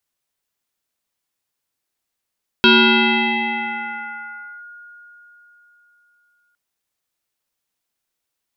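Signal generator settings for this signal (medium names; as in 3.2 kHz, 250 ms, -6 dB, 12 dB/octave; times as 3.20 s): FM tone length 3.91 s, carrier 1.43 kHz, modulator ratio 0.42, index 3.8, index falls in 1.99 s linear, decay 4.18 s, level -7 dB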